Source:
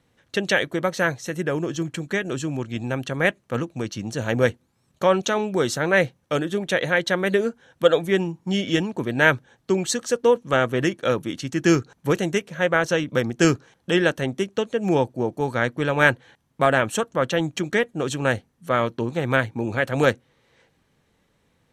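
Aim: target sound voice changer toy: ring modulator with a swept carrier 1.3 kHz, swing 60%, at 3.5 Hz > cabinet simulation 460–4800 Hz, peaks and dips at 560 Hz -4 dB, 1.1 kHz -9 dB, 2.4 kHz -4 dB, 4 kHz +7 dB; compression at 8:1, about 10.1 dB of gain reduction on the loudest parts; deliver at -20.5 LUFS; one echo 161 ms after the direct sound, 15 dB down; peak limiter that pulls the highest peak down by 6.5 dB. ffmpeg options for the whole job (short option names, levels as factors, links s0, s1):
-af "acompressor=threshold=0.0891:ratio=8,alimiter=limit=0.15:level=0:latency=1,aecho=1:1:161:0.178,aeval=exprs='val(0)*sin(2*PI*1300*n/s+1300*0.6/3.5*sin(2*PI*3.5*n/s))':c=same,highpass=460,equalizer=f=560:t=q:w=4:g=-4,equalizer=f=1100:t=q:w=4:g=-9,equalizer=f=2400:t=q:w=4:g=-4,equalizer=f=4000:t=q:w=4:g=7,lowpass=f=4800:w=0.5412,lowpass=f=4800:w=1.3066,volume=3.98"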